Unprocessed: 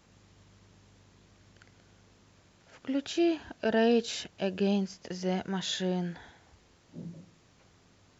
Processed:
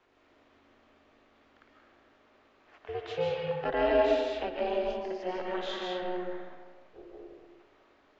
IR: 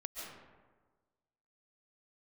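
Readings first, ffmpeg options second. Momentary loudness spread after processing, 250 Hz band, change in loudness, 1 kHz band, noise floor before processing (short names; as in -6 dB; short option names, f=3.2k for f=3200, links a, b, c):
24 LU, -9.0 dB, -1.0 dB, +5.0 dB, -63 dBFS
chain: -filter_complex "[0:a]aeval=exprs='val(0)*sin(2*PI*180*n/s)':c=same,acrossover=split=340 3500:gain=0.178 1 0.0708[a][b][c];[a][b][c]amix=inputs=3:normalize=0[d];[1:a]atrim=start_sample=2205,asetrate=42777,aresample=44100[e];[d][e]afir=irnorm=-1:irlink=0,volume=6dB"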